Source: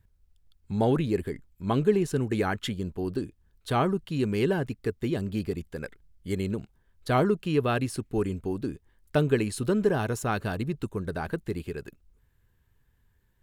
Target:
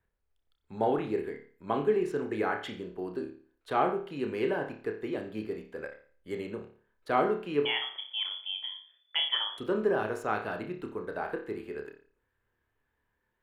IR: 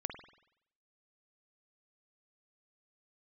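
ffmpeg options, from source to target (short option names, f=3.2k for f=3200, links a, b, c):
-filter_complex "[0:a]asettb=1/sr,asplit=3[a][b][c];[a]atrim=end=7.654[d];[b]atrim=start=7.65:end=9.58,asetpts=PTS-STARTPTS,afade=t=in:d=0.004:c=qsin,afade=t=out:st=1.926:d=0.004:c=qsin,lowpass=f=3k:t=q:w=0.5098,lowpass=f=3k:t=q:w=0.6013,lowpass=f=3k:t=q:w=0.9,lowpass=f=3k:t=q:w=2.563,afreqshift=-3500[e];[c]atrim=start=9.576[f];[d][e]acrossfade=d=0.004:c1=hsin:c2=qsin[g];[g][f]acrossfade=d=0.004:c1=qsin:c2=hsin,acrossover=split=300 2600:gain=0.141 1 0.224[h][i][j];[h][i][j]amix=inputs=3:normalize=0[k];[1:a]atrim=start_sample=2205,asetrate=74970,aresample=44100[l];[k][l]afir=irnorm=-1:irlink=0,volume=4.5dB"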